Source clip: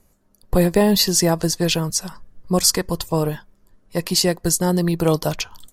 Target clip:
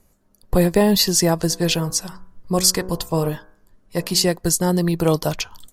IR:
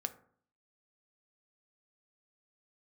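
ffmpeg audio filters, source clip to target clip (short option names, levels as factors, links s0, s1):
-filter_complex "[0:a]asplit=3[s0][s1][s2];[s0]afade=t=out:st=1.49:d=0.02[s3];[s1]bandreject=f=61.73:t=h:w=4,bandreject=f=123.46:t=h:w=4,bandreject=f=185.19:t=h:w=4,bandreject=f=246.92:t=h:w=4,bandreject=f=308.65:t=h:w=4,bandreject=f=370.38:t=h:w=4,bandreject=f=432.11:t=h:w=4,bandreject=f=493.84:t=h:w=4,bandreject=f=555.57:t=h:w=4,bandreject=f=617.3:t=h:w=4,bandreject=f=679.03:t=h:w=4,bandreject=f=740.76:t=h:w=4,bandreject=f=802.49:t=h:w=4,bandreject=f=864.22:t=h:w=4,bandreject=f=925.95:t=h:w=4,bandreject=f=987.68:t=h:w=4,bandreject=f=1049.41:t=h:w=4,bandreject=f=1111.14:t=h:w=4,bandreject=f=1172.87:t=h:w=4,bandreject=f=1234.6:t=h:w=4,bandreject=f=1296.33:t=h:w=4,bandreject=f=1358.06:t=h:w=4,bandreject=f=1419.79:t=h:w=4,bandreject=f=1481.52:t=h:w=4,bandreject=f=1543.25:t=h:w=4,bandreject=f=1604.98:t=h:w=4,bandreject=f=1666.71:t=h:w=4,afade=t=in:st=1.49:d=0.02,afade=t=out:st=4.23:d=0.02[s4];[s2]afade=t=in:st=4.23:d=0.02[s5];[s3][s4][s5]amix=inputs=3:normalize=0"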